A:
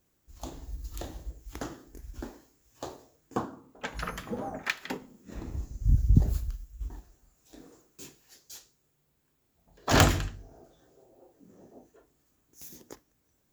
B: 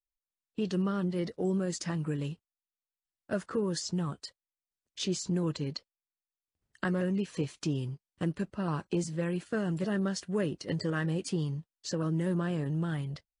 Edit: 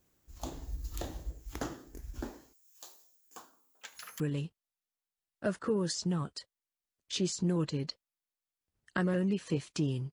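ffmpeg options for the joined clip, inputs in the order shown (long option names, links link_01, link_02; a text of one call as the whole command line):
ffmpeg -i cue0.wav -i cue1.wav -filter_complex "[0:a]asettb=1/sr,asplit=3[link_01][link_02][link_03];[link_01]atrim=end=2.534[link_04];[link_02]atrim=start=2.53:end=4.2,asetpts=PTS-STARTPTS,afade=type=in:duration=0.004:curve=qsin,afade=type=out:start_time=1.666:duration=0.004:curve=qsin,aderivative[link_05];[link_03]atrim=start=4.196[link_06];[link_04][link_05]acrossfade=duration=0.004:curve1=hsin:curve2=qsin[link_07];[link_07][link_06]acrossfade=duration=0.004:curve1=qsin:curve2=hsin,apad=whole_dur=10.12,atrim=end=10.12,atrim=end=4.202[link_08];[1:a]atrim=start=2.068:end=7.99[link_09];[link_08][link_09]acrossfade=duration=0.004:curve1=hsin:curve2=hsin" out.wav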